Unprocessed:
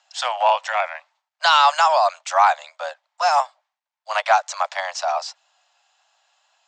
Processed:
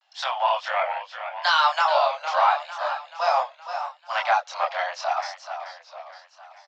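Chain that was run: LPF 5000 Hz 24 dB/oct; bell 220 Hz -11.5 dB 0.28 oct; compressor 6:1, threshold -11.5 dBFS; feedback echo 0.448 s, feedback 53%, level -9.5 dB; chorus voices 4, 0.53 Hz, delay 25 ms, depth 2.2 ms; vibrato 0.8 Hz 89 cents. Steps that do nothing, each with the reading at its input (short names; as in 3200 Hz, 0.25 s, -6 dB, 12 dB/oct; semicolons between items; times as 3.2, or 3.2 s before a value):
bell 220 Hz: input band starts at 480 Hz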